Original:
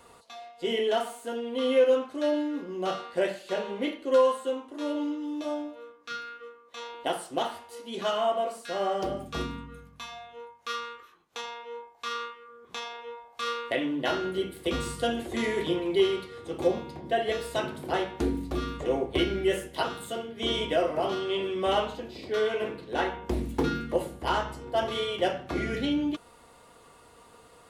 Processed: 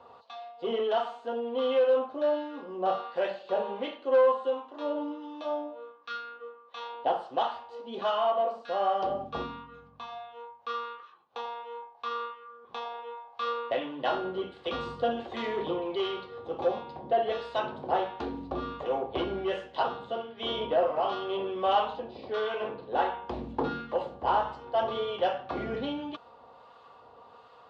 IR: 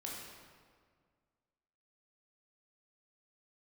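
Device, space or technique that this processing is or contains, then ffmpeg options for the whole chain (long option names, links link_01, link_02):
guitar amplifier with harmonic tremolo: -filter_complex "[0:a]asettb=1/sr,asplit=3[link_01][link_02][link_03];[link_01]atrim=end=19.974[link_04];[link_02]atrim=start=19.97:end=21.08,asetpts=PTS-STARTPTS,afade=type=in:duration=0.004:curve=qsin,afade=type=out:start_time=1.106:duration=0.004:curve=qsin,lowpass=5700[link_05];[link_03]atrim=start=21.076[link_06];[link_04][link_05]acrossfade=duration=0.004:curve1=hsin:curve2=qsin[link_07];[link_07][link_06]acrossfade=duration=0.004:curve1=qsin:curve2=hsin,acrossover=split=980[link_08][link_09];[link_08]aeval=exprs='val(0)*(1-0.5/2+0.5/2*cos(2*PI*1.4*n/s))':channel_layout=same[link_10];[link_09]aeval=exprs='val(0)*(1-0.5/2-0.5/2*cos(2*PI*1.4*n/s))':channel_layout=same[link_11];[link_10][link_11]amix=inputs=2:normalize=0,asoftclip=type=tanh:threshold=-22dB,highpass=98,equalizer=frequency=170:width_type=q:width=4:gain=-7,equalizer=frequency=320:width_type=q:width=4:gain=-6,equalizer=frequency=540:width_type=q:width=4:gain=5,equalizer=frequency=800:width_type=q:width=4:gain=9,equalizer=frequency=1100:width_type=q:width=4:gain=6,equalizer=frequency=2100:width_type=q:width=4:gain=-7,lowpass=frequency=4200:width=0.5412,lowpass=frequency=4200:width=1.3066"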